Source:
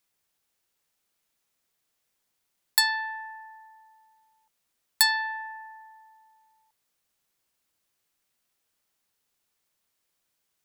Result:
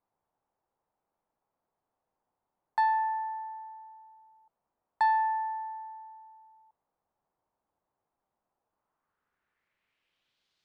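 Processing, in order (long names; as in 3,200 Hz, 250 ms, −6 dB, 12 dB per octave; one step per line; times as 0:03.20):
low-pass filter sweep 870 Hz → 4,100 Hz, 0:08.68–0:10.52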